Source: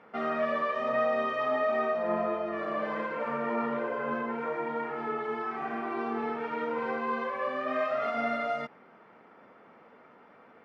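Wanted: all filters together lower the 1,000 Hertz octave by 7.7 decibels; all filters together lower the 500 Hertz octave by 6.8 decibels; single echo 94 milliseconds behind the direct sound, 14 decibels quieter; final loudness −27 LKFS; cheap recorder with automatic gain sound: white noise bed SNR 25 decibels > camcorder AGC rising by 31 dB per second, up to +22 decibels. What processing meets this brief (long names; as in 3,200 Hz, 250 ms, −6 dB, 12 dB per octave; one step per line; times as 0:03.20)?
parametric band 500 Hz −5.5 dB
parametric band 1,000 Hz −9 dB
single-tap delay 94 ms −14 dB
white noise bed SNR 25 dB
camcorder AGC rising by 31 dB per second, up to +22 dB
level +9 dB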